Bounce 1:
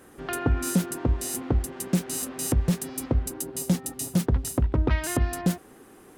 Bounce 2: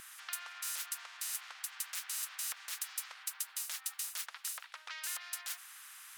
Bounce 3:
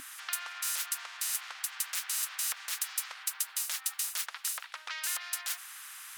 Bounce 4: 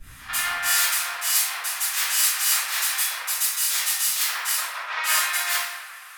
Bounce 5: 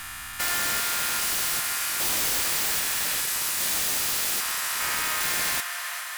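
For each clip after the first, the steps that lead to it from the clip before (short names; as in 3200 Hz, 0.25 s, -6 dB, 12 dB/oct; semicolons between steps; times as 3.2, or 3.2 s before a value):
steep high-pass 1300 Hz 36 dB/oct; spectral compressor 2:1; gain -5.5 dB
bell 270 Hz +11 dB 0.25 oct; gain +6 dB
reverb RT60 2.4 s, pre-delay 3 ms, DRR -17.5 dB; three-band expander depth 100%; gain -1.5 dB
stepped spectrum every 0.4 s; swelling echo 0.136 s, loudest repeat 5, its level -17.5 dB; wrapped overs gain 19 dB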